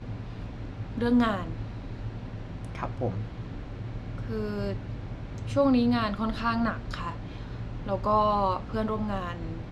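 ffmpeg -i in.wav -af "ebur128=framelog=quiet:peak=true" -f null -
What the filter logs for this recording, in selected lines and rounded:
Integrated loudness:
  I:         -30.1 LUFS
  Threshold: -40.1 LUFS
Loudness range:
  LRA:         7.6 LU
  Threshold: -50.1 LUFS
  LRA low:   -35.2 LUFS
  LRA high:  -27.7 LUFS
True peak:
  Peak:      -12.3 dBFS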